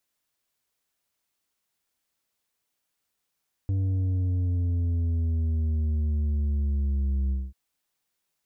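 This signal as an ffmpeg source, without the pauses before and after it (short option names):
-f lavfi -i "aevalsrc='0.0668*clip((3.84-t)/0.22,0,1)*tanh(2.11*sin(2*PI*97*3.84/log(65/97)*(exp(log(65/97)*t/3.84)-1)))/tanh(2.11)':d=3.84:s=44100"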